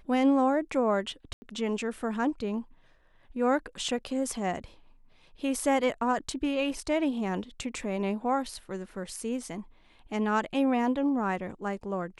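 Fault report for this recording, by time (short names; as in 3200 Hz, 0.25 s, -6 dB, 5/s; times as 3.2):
1.33–1.42 gap 90 ms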